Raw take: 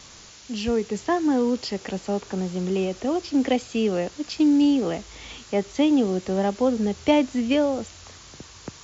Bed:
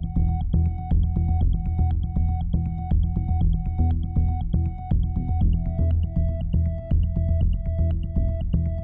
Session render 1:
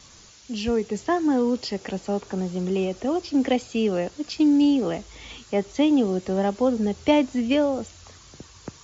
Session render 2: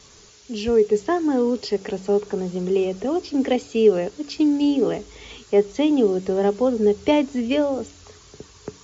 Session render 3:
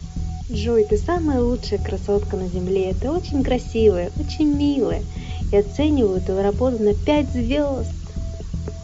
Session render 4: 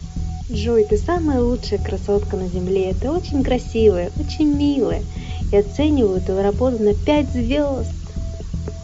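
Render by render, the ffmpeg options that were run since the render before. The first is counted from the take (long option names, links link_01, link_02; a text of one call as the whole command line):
ffmpeg -i in.wav -af "afftdn=noise_reduction=6:noise_floor=-46" out.wav
ffmpeg -i in.wav -af "equalizer=frequency=420:width_type=o:width=0.21:gain=13.5,bandreject=frequency=94.87:width_type=h:width=4,bandreject=frequency=189.74:width_type=h:width=4,bandreject=frequency=284.61:width_type=h:width=4" out.wav
ffmpeg -i in.wav -i bed.wav -filter_complex "[1:a]volume=-5dB[link_01];[0:a][link_01]amix=inputs=2:normalize=0" out.wav
ffmpeg -i in.wav -af "volume=1.5dB" out.wav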